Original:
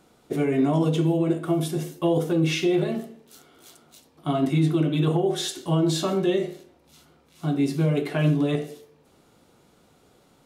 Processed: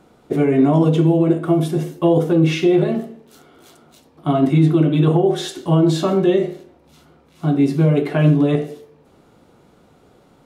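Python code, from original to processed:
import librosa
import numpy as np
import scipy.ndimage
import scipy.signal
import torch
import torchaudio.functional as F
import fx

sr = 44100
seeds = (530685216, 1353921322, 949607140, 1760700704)

y = fx.high_shelf(x, sr, hz=2700.0, db=-10.0)
y = y * librosa.db_to_amplitude(7.5)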